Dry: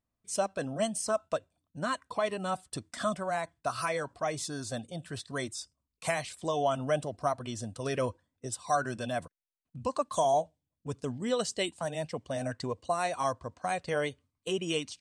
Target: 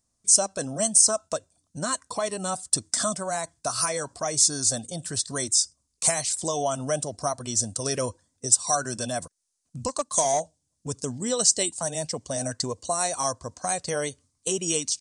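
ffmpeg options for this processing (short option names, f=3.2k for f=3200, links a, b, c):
-filter_complex "[0:a]asettb=1/sr,asplit=3[a][b][c];[a]atrim=end=9.884[d];[b]atrim=start=9.88:end=10.4,asetpts=PTS-STARTPTS,afade=t=in:d=0.004:c=qsin,afade=t=out:st=0.516:d=0.004:c=qsin,aeval=exprs='0.168*(cos(1*acos(clip(val(0)/0.168,-1,1)))-cos(1*PI/2))+0.00944*(cos(7*acos(clip(val(0)/0.168,-1,1)))-cos(7*PI/2))':c=same[e];[c]atrim=start=10.396[f];[d][e]acrossfade=d=0.004:c1=hsin:c2=qsin[g];[g][f]acrossfade=d=0.004:c1=qsin:c2=hsin,asplit=2[h][i];[i]acompressor=threshold=-40dB:ratio=6,volume=2dB[j];[h][j]amix=inputs=2:normalize=0,aresample=22050,aresample=44100,highshelf=f=4.2k:t=q:w=1.5:g=13.5"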